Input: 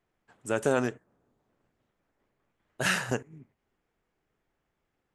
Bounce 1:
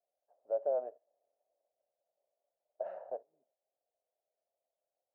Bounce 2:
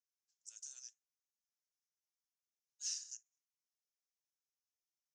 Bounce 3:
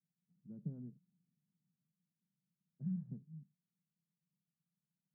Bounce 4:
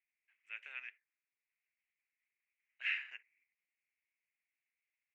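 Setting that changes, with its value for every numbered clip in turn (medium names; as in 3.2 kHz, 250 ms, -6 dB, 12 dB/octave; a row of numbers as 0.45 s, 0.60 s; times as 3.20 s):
Butterworth band-pass, frequency: 620 Hz, 5.9 kHz, 170 Hz, 2.3 kHz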